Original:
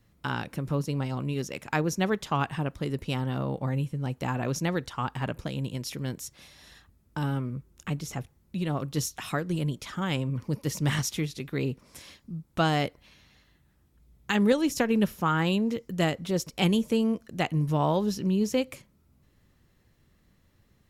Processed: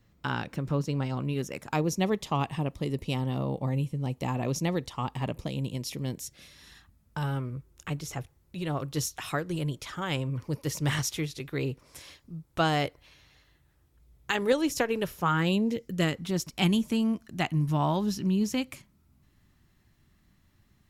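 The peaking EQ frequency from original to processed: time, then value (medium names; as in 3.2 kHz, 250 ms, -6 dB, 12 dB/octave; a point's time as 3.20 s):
peaking EQ -13 dB 0.38 oct
1.20 s 11 kHz
1.80 s 1.5 kHz
6.09 s 1.5 kHz
7.41 s 210 Hz
15.21 s 210 Hz
15.53 s 1.7 kHz
16.33 s 490 Hz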